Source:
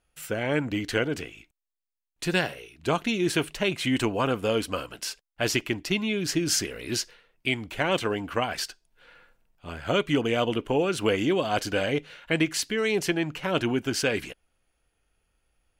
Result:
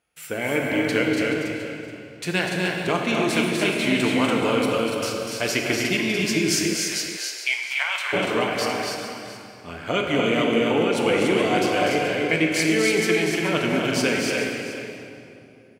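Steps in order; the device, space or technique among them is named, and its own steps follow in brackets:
stadium PA (high-pass filter 120 Hz 12 dB per octave; parametric band 2,200 Hz +6.5 dB 0.23 octaves; loudspeakers that aren't time-aligned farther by 84 metres −6 dB, 99 metres −4 dB; convolution reverb RT60 2.8 s, pre-delay 4 ms, DRR 2 dB)
0:06.73–0:08.12: high-pass filter 460 Hz → 1,100 Hz 24 dB per octave
single-tap delay 426 ms −12.5 dB

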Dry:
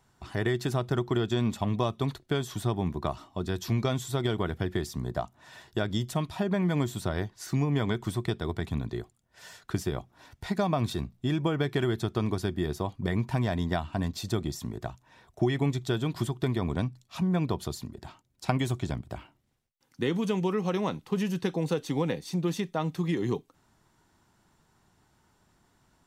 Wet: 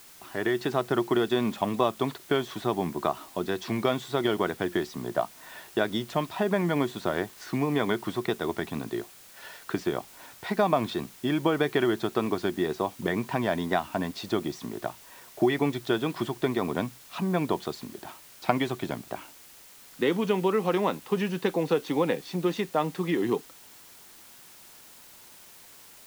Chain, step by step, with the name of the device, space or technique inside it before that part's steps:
dictaphone (band-pass filter 270–3,400 Hz; automatic gain control gain up to 5.5 dB; tape wow and flutter; white noise bed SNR 22 dB)

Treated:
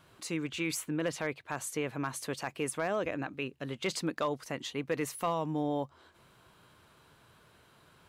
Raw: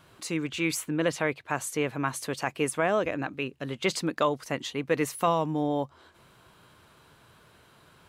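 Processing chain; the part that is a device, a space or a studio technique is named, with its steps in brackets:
clipper into limiter (hard clipping −15 dBFS, distortion −26 dB; brickwall limiter −18 dBFS, peak gain reduction 3 dB)
level −4 dB

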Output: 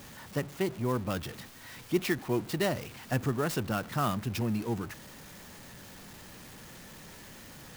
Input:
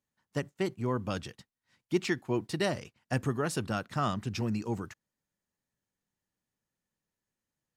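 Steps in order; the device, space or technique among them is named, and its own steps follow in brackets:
early CD player with a faulty converter (converter with a step at zero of −40.5 dBFS; converter with an unsteady clock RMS 0.026 ms)

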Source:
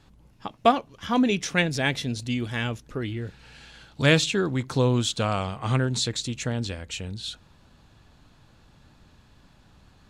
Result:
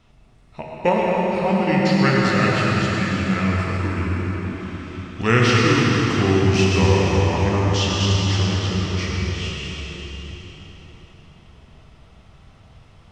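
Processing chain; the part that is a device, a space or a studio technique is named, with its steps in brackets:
slowed and reverbed (speed change −23%; convolution reverb RT60 3.5 s, pre-delay 84 ms, DRR 0.5 dB)
dense smooth reverb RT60 4 s, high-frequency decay 0.75×, DRR −1.5 dB

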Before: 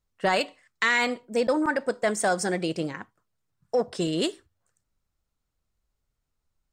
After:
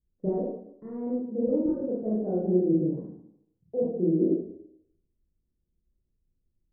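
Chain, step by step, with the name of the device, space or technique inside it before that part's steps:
0:03.82–0:04.27: elliptic high-pass filter 170 Hz
next room (low-pass filter 400 Hz 24 dB per octave; convolution reverb RT60 0.75 s, pre-delay 22 ms, DRR −7 dB)
level −2.5 dB

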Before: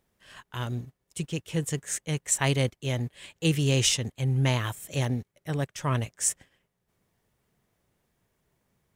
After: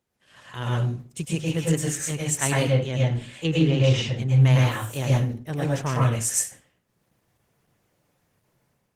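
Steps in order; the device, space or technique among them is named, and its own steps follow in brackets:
0:02.56–0:04.42: treble cut that deepens with the level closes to 2,500 Hz, closed at −20.5 dBFS
far-field microphone of a smart speaker (convolution reverb RT60 0.40 s, pre-delay 100 ms, DRR −4 dB; high-pass filter 82 Hz 12 dB per octave; automatic gain control gain up to 7.5 dB; level −5.5 dB; Opus 16 kbit/s 48,000 Hz)

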